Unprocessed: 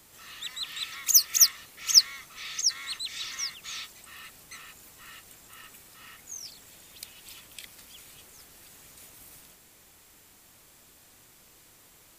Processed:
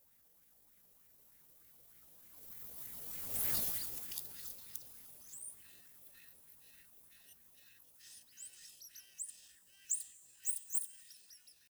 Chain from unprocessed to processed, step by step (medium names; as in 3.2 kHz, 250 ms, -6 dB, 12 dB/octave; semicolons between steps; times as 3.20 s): reverse the whole clip; Doppler pass-by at 3.67 s, 23 m/s, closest 2.6 m; tone controls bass +7 dB, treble +5 dB; speed mistake 24 fps film run at 25 fps; plate-style reverb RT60 1.9 s, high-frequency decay 1×, DRR 16 dB; pitch shift +6.5 st; treble shelf 10 kHz +12 dB; sweeping bell 3.3 Hz 500–2100 Hz +9 dB; trim +7.5 dB